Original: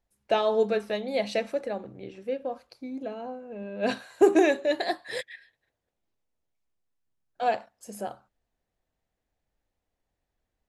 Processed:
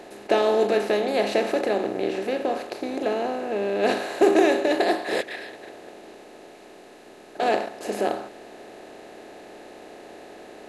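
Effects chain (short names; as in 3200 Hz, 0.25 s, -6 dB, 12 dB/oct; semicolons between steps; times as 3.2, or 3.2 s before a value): per-bin compression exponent 0.4; gain -1.5 dB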